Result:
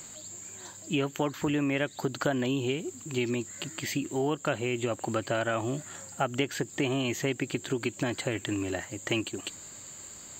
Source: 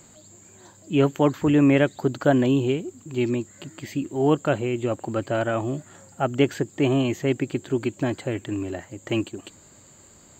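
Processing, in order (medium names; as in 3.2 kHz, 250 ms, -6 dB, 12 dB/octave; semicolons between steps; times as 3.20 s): compression 6:1, threshold -25 dBFS, peak gain reduction 11.5 dB; tilt shelf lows -5 dB, about 1.2 kHz; trim +3 dB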